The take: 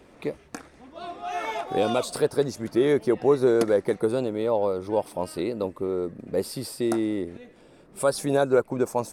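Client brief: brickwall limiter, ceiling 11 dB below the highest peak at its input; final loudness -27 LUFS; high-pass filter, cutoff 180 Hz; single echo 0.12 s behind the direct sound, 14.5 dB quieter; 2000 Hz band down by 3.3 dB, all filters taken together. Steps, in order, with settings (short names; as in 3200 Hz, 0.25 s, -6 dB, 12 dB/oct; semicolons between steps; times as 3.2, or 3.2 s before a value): HPF 180 Hz; bell 2000 Hz -4.5 dB; limiter -20.5 dBFS; echo 0.12 s -14.5 dB; gain +4 dB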